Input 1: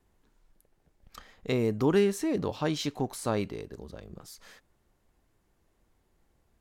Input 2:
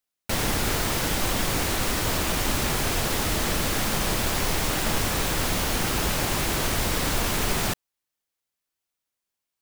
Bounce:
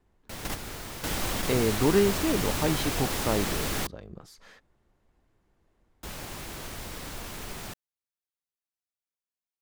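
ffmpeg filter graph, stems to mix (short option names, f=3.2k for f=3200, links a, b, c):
-filter_complex "[0:a]lowpass=f=3.3k:p=1,volume=1.5dB,asplit=2[a][b];[1:a]volume=-5dB,asplit=3[c][d][e];[c]atrim=end=3.87,asetpts=PTS-STARTPTS,afade=t=out:st=3.866:d=0.004:c=hsin[f];[d]atrim=start=3.87:end=6.03,asetpts=PTS-STARTPTS,volume=0[g];[e]atrim=start=6.03,asetpts=PTS-STARTPTS,afade=t=in:d=0.004:c=hsin[h];[f][g][h]concat=n=3:v=0:a=1[i];[b]apad=whole_len=423836[j];[i][j]sidechaingate=range=-9dB:threshold=-59dB:ratio=16:detection=peak[k];[a][k]amix=inputs=2:normalize=0"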